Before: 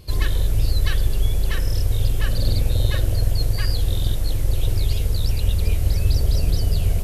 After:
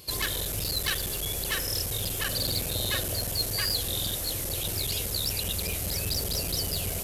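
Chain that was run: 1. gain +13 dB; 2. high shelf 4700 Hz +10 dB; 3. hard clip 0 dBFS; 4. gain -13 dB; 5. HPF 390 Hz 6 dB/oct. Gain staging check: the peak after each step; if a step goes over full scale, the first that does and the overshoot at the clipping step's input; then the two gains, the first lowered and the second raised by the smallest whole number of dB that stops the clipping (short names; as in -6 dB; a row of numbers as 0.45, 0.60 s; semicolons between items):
+7.5, +8.0, 0.0, -13.0, -13.5 dBFS; step 1, 8.0 dB; step 1 +5 dB, step 4 -5 dB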